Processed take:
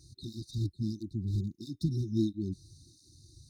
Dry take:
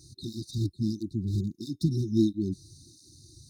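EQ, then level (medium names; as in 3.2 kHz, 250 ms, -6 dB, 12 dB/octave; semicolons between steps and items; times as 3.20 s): bass shelf 97 Hz +11 dB; peaking EQ 2.1 kHz +6.5 dB 1.6 oct; -7.5 dB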